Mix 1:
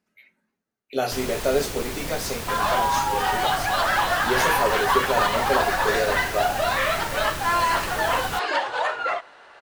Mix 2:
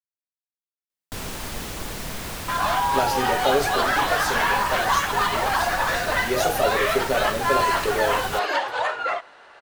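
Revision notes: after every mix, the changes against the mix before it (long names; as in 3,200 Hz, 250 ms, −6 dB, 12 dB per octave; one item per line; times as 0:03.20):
speech: entry +2.00 s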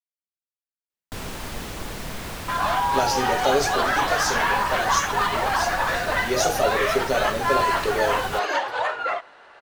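speech: add parametric band 5,900 Hz +11 dB 0.93 octaves
master: add high-shelf EQ 4,600 Hz −5 dB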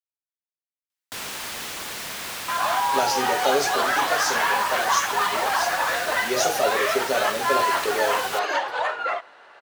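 first sound: add tilt shelving filter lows −6 dB, about 890 Hz
master: add high-pass filter 250 Hz 6 dB per octave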